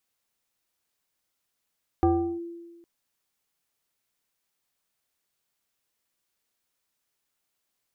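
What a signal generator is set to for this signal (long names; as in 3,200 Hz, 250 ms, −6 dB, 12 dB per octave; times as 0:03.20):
two-operator FM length 0.81 s, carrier 340 Hz, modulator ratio 1.25, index 1, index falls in 0.37 s linear, decay 1.38 s, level −16 dB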